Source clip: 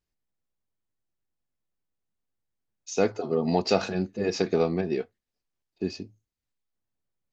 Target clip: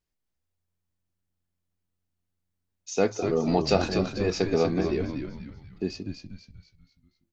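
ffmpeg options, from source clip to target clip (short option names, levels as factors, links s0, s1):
-filter_complex "[0:a]asplit=6[s0][s1][s2][s3][s4][s5];[s1]adelay=242,afreqshift=-89,volume=0.501[s6];[s2]adelay=484,afreqshift=-178,volume=0.221[s7];[s3]adelay=726,afreqshift=-267,volume=0.0966[s8];[s4]adelay=968,afreqshift=-356,volume=0.0427[s9];[s5]adelay=1210,afreqshift=-445,volume=0.0188[s10];[s0][s6][s7][s8][s9][s10]amix=inputs=6:normalize=0"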